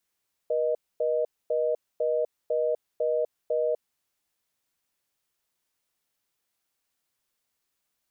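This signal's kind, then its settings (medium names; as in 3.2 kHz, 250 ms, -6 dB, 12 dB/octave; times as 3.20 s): call progress tone reorder tone, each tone -25.5 dBFS 3.50 s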